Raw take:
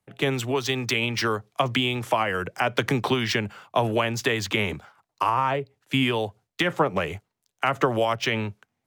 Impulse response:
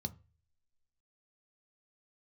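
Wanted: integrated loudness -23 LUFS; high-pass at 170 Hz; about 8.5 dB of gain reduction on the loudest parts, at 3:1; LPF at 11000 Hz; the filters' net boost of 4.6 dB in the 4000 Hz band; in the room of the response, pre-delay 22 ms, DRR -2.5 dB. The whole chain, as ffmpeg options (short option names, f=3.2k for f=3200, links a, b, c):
-filter_complex "[0:a]highpass=170,lowpass=11k,equalizer=f=4k:t=o:g=6.5,acompressor=threshold=-29dB:ratio=3,asplit=2[a][b];[1:a]atrim=start_sample=2205,adelay=22[c];[b][c]afir=irnorm=-1:irlink=0,volume=4dB[d];[a][d]amix=inputs=2:normalize=0,volume=2dB"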